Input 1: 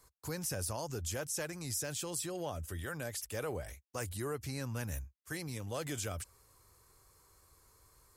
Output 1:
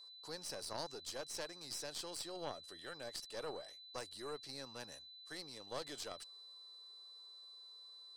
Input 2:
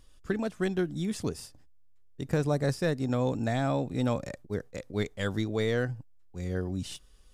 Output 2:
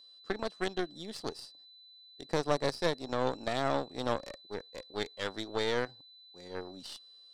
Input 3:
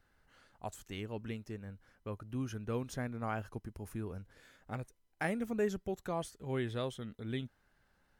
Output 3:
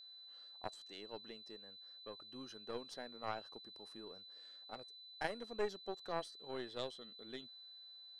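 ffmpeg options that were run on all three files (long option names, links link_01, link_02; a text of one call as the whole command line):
ffmpeg -i in.wav -af "highpass=420,equalizer=frequency=1500:width_type=q:width=4:gain=-5,equalizer=frequency=2300:width_type=q:width=4:gain=-9,equalizer=frequency=4500:width_type=q:width=4:gain=8,equalizer=frequency=6900:width_type=q:width=4:gain=-9,lowpass=frequency=8400:width=0.5412,lowpass=frequency=8400:width=1.3066,aeval=exprs='0.126*(cos(1*acos(clip(val(0)/0.126,-1,1)))-cos(1*PI/2))+0.0224*(cos(4*acos(clip(val(0)/0.126,-1,1)))-cos(4*PI/2))+0.00891*(cos(7*acos(clip(val(0)/0.126,-1,1)))-cos(7*PI/2))':channel_layout=same,aeval=exprs='val(0)+0.00178*sin(2*PI*4000*n/s)':channel_layout=same,volume=1dB" out.wav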